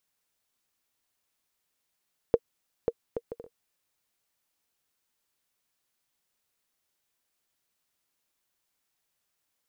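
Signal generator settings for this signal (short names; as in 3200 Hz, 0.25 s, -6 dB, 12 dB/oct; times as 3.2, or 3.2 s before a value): bouncing ball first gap 0.54 s, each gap 0.53, 468 Hz, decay 49 ms -9 dBFS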